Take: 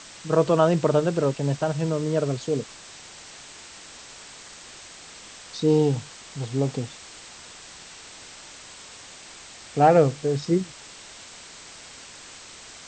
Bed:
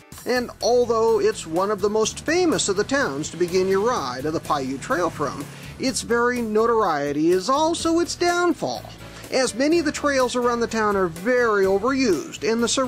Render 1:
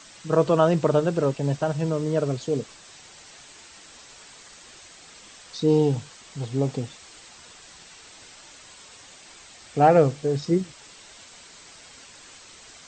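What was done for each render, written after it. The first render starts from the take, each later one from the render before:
broadband denoise 6 dB, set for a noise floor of −45 dBFS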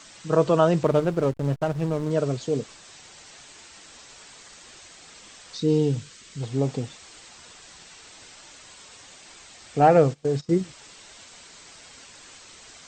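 0:00.83–0:02.11: slack as between gear wheels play −28 dBFS
0:05.58–0:06.43: parametric band 800 Hz −12 dB 0.86 octaves
0:09.81–0:10.58: noise gate −32 dBFS, range −17 dB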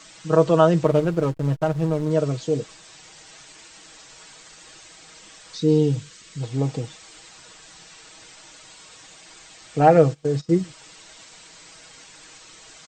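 comb filter 6.3 ms, depth 52%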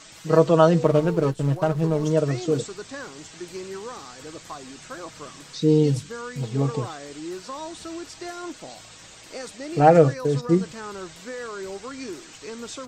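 mix in bed −15.5 dB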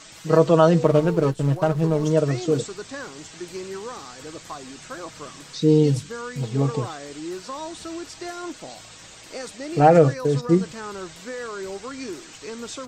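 level +1.5 dB
brickwall limiter −3 dBFS, peak gain reduction 2.5 dB

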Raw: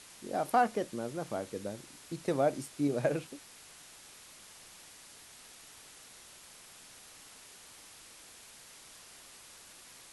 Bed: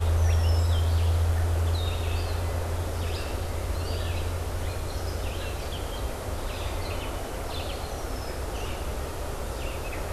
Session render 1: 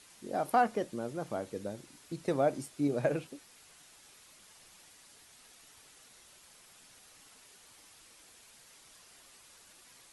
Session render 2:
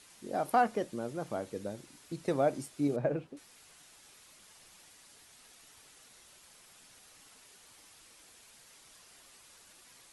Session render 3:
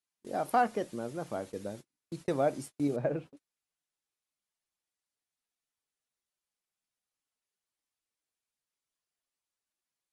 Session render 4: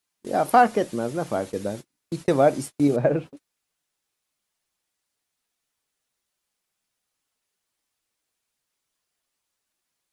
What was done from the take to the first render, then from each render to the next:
broadband denoise 6 dB, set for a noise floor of −54 dBFS
0:02.96–0:03.37: low-pass filter 1,000 Hz 6 dB per octave
noise gate −44 dBFS, range −35 dB
level +10.5 dB

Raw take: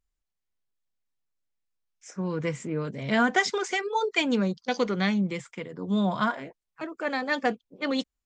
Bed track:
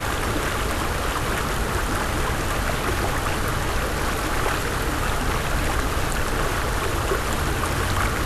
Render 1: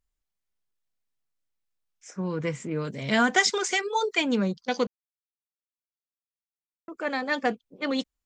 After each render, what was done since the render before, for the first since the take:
0:02.71–0:04.16: high-shelf EQ 3,700 Hz +10 dB
0:04.87–0:06.88: silence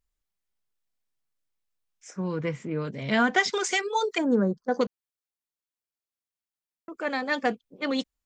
0:02.40–0:03.53: high-frequency loss of the air 120 metres
0:04.18–0:04.81: drawn EQ curve 160 Hz 0 dB, 440 Hz +5 dB, 910 Hz −1 dB, 1,700 Hz −1 dB, 2,500 Hz −30 dB, 10,000 Hz −5 dB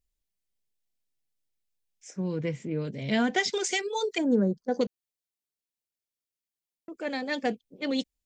parametric band 1,200 Hz −12.5 dB 0.99 octaves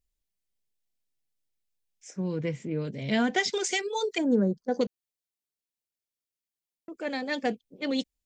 no processing that can be heard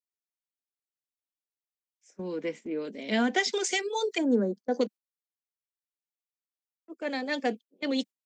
Butterworth high-pass 210 Hz 48 dB per octave
noise gate −40 dBFS, range −13 dB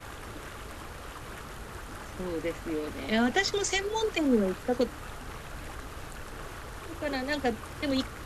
mix in bed track −18 dB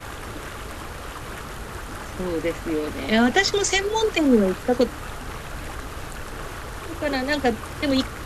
level +7.5 dB

